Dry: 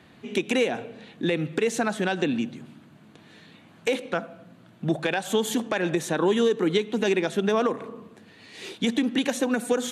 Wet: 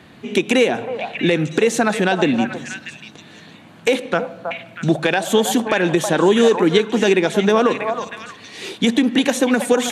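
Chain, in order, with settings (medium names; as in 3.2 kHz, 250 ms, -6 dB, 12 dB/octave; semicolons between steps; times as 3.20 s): repeats whose band climbs or falls 320 ms, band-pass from 810 Hz, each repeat 1.4 oct, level -3 dB; trim +8 dB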